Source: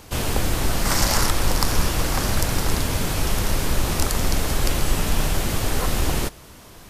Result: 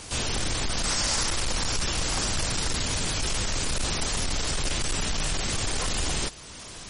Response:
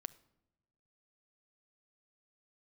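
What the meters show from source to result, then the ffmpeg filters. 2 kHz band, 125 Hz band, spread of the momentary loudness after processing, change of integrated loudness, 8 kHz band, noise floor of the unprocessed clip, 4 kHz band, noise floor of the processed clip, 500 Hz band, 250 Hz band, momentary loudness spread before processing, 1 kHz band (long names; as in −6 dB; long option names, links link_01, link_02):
−3.5 dB, −8.0 dB, 3 LU, −4.0 dB, −1.0 dB, −44 dBFS, 0.0 dB, −42 dBFS, −7.5 dB, −8.0 dB, 3 LU, −7.0 dB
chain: -af "highshelf=frequency=2400:gain=10,volume=18dB,asoftclip=hard,volume=-18dB,alimiter=limit=-22.5dB:level=0:latency=1:release=337" -ar 48000 -c:a libmp3lame -b:a 40k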